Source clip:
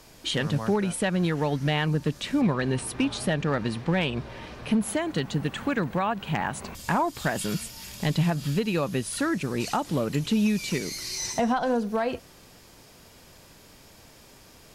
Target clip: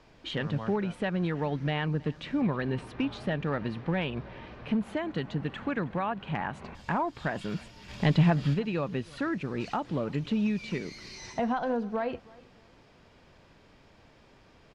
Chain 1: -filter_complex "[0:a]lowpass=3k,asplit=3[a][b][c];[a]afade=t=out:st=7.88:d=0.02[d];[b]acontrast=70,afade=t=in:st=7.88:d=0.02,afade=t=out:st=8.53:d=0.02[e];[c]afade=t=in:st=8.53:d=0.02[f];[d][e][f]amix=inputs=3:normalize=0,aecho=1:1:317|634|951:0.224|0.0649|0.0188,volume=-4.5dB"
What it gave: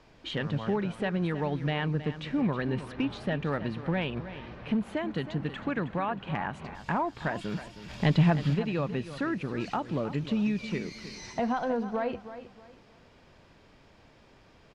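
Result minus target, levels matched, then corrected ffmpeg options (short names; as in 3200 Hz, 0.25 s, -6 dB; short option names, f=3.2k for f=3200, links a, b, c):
echo-to-direct +11 dB
-filter_complex "[0:a]lowpass=3k,asplit=3[a][b][c];[a]afade=t=out:st=7.88:d=0.02[d];[b]acontrast=70,afade=t=in:st=7.88:d=0.02,afade=t=out:st=8.53:d=0.02[e];[c]afade=t=in:st=8.53:d=0.02[f];[d][e][f]amix=inputs=3:normalize=0,aecho=1:1:317|634:0.0631|0.0183,volume=-4.5dB"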